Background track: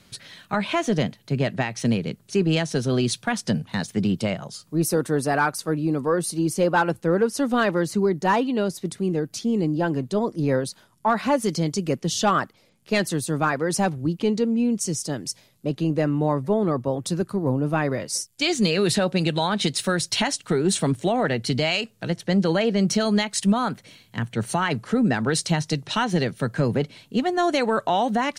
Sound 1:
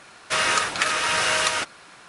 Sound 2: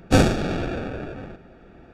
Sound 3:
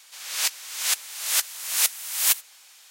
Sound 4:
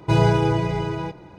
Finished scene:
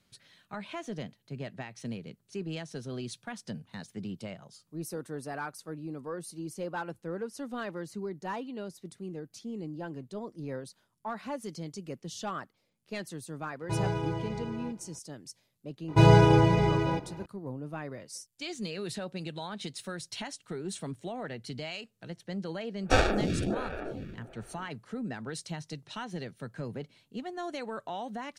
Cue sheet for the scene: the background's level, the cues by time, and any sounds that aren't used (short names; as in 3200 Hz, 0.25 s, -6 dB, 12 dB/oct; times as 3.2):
background track -16 dB
13.61 add 4 -13 dB
15.88 add 4 -0.5 dB
22.79 add 2 -1.5 dB, fades 0.10 s + photocell phaser 1.4 Hz
not used: 1, 3